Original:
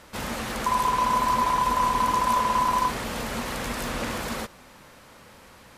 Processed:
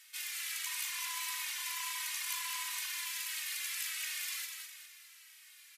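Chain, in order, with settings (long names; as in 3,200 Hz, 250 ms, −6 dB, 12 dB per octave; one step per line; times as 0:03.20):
Chebyshev high-pass filter 2,100 Hz, order 3
high-shelf EQ 8,100 Hz +9 dB
on a send: repeating echo 203 ms, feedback 44%, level −5.5 dB
on the sum: barber-pole flanger 2.7 ms −1.5 Hz
level −2 dB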